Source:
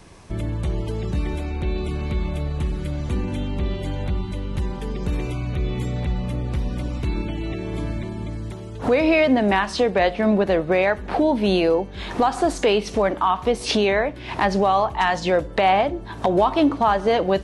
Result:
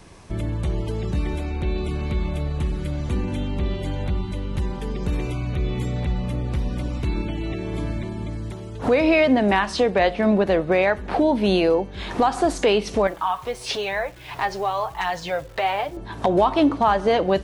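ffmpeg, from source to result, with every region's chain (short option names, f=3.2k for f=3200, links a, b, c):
-filter_complex "[0:a]asettb=1/sr,asplit=3[a][b][c];[a]atrim=end=13.074[d];[b]atrim=start=13.07:end=15.97,asetpts=PTS-STARTPTS,afade=t=in:d=0.004:c=qsin,afade=t=out:st=2.896:d=0.004:c=qsin,equalizer=f=250:t=o:w=1:g=-13,flanger=delay=5.8:depth=2:regen=17:speed=1:shape=sinusoidal,acrusher=bits=9:dc=4:mix=0:aa=0.000001[e];[c]atrim=start=15.966[f];[d][e]acrossfade=d=0.004:c1=hsin:c2=qsin[g];[g][f]acrossfade=d=0.004:c1=qsin:c2=hsin"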